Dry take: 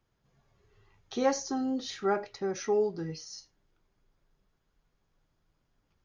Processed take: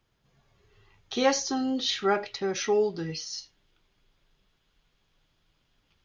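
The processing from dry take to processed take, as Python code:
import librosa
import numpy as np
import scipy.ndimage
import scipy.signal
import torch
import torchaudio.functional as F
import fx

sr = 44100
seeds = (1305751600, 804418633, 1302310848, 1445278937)

y = fx.peak_eq(x, sr, hz=3200.0, db=fx.steps((0.0, 6.0), (1.17, 12.5)), octaves=1.3)
y = y * 10.0 ** (2.5 / 20.0)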